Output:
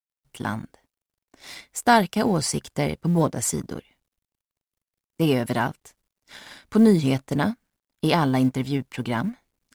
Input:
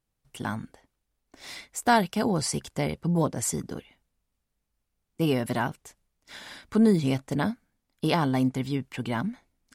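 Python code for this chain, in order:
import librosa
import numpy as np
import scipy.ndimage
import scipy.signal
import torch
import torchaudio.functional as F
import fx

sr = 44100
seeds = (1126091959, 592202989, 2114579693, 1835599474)

y = fx.law_mismatch(x, sr, coded='A')
y = y * librosa.db_to_amplitude(4.5)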